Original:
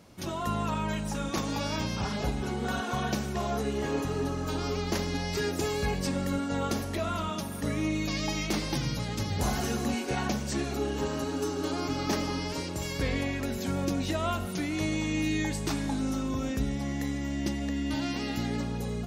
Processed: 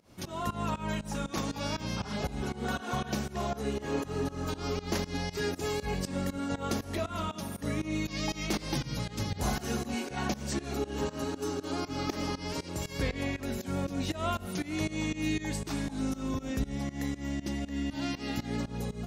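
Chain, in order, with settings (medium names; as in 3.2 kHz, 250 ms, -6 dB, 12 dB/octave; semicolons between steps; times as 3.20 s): volume shaper 119 bpm, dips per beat 2, -20 dB, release 175 ms; trim -1 dB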